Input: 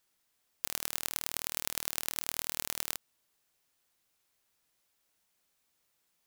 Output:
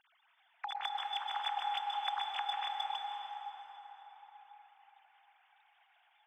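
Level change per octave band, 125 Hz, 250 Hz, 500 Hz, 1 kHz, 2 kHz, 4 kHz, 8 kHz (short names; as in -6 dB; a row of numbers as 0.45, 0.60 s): under -25 dB, under -25 dB, -8.0 dB, +14.0 dB, -1.0 dB, +2.0 dB, under -25 dB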